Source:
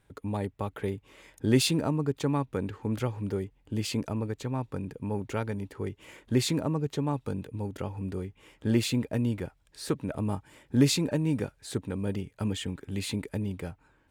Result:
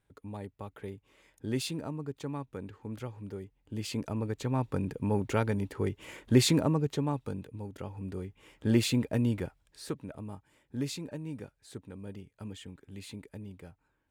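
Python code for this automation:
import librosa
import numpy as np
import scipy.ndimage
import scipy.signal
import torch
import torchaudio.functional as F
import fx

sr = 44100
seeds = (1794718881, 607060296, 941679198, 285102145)

y = fx.gain(x, sr, db=fx.line((3.4, -9.5), (4.68, 3.0), (6.57, 3.0), (7.66, -7.0), (8.75, 0.0), (9.42, 0.0), (10.28, -12.0)))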